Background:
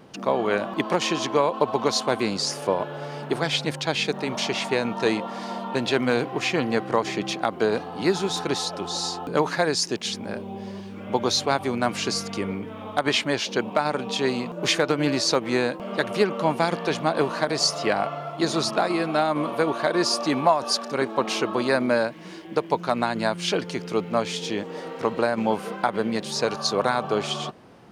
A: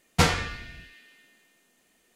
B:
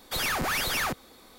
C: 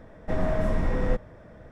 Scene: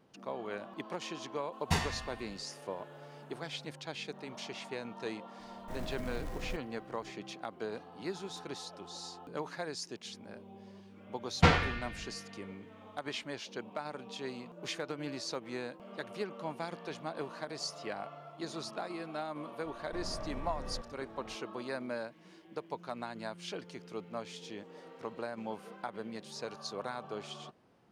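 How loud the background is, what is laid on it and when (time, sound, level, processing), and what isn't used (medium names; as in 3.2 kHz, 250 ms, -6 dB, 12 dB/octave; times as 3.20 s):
background -17 dB
1.52 s: add A -11.5 dB + comb 1.1 ms, depth 53%
5.40 s: add C -16 dB + short-mantissa float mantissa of 2-bit
11.24 s: add A -2 dB + low-pass 3.3 kHz
19.65 s: add C -8.5 dB + compression 2.5:1, threshold -33 dBFS
not used: B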